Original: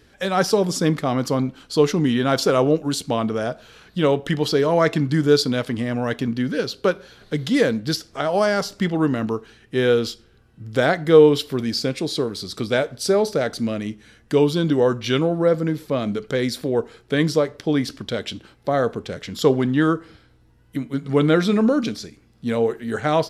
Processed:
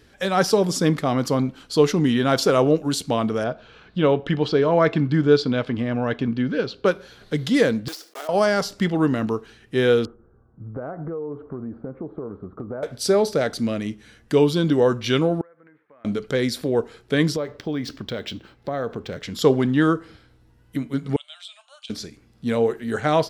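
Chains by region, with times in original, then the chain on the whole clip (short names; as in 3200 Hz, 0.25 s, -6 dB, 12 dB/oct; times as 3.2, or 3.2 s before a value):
3.44–6.86 LPF 3300 Hz + notch 1900 Hz
7.88–8.29 block floating point 3-bit + HPF 330 Hz 24 dB/oct + compressor 4:1, threshold -32 dBFS
10.05–12.83 elliptic low-pass 1300 Hz, stop band 80 dB + compressor 12:1, threshold -27 dBFS
15.41–16.05 steep low-pass 1900 Hz + differentiator + compressor 12:1, threshold -47 dBFS
17.36–19.23 high shelf 9400 Hz -11.5 dB + compressor 2.5:1, threshold -25 dBFS + decimation joined by straight lines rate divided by 2×
21.16–21.9 EQ curve 110 Hz 0 dB, 460 Hz -24 dB, 2000 Hz -20 dB, 3100 Hz +3 dB, 5600 Hz -14 dB, 8400 Hz +1 dB, 13000 Hz -21 dB + compressor 4:1, threshold -32 dBFS + brick-wall FIR high-pass 560 Hz
whole clip: dry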